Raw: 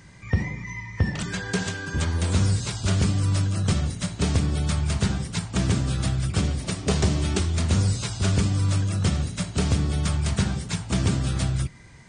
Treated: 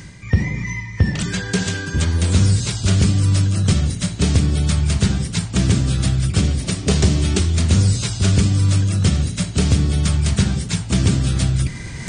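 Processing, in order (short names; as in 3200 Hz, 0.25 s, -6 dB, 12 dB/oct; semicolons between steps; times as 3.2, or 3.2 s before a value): bell 920 Hz -6.5 dB 1.8 oct; reverse; upward compressor, threshold -25 dBFS; reverse; gain +7 dB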